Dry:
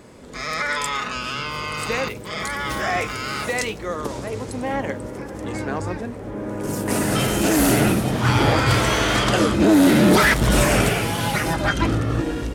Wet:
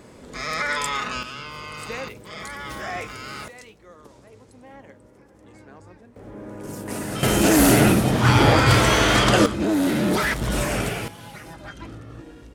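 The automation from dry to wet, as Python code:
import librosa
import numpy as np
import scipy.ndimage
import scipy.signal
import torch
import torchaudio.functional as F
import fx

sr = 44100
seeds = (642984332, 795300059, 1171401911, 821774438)

y = fx.gain(x, sr, db=fx.steps((0.0, -1.0), (1.23, -8.0), (3.48, -20.0), (6.16, -8.5), (7.23, 2.0), (9.46, -7.0), (11.08, -18.0)))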